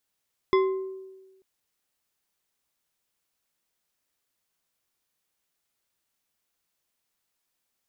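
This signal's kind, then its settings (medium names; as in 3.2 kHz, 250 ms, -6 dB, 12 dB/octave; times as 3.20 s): glass hit bar, lowest mode 381 Hz, decay 1.26 s, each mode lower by 6 dB, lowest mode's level -16.5 dB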